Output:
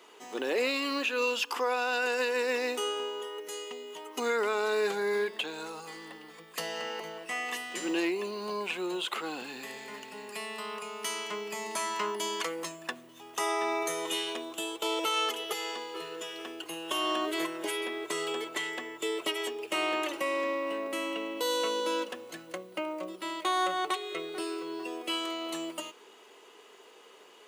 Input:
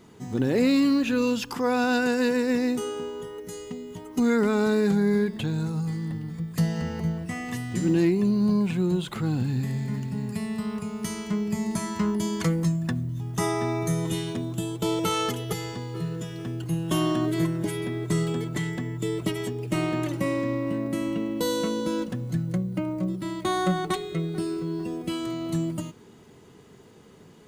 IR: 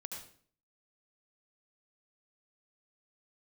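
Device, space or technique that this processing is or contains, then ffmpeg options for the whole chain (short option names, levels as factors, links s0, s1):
laptop speaker: -af "highpass=f=410:w=0.5412,highpass=f=410:w=1.3066,equalizer=f=1100:t=o:w=0.56:g=4,equalizer=f=2800:t=o:w=0.58:g=8.5,alimiter=limit=0.1:level=0:latency=1:release=193"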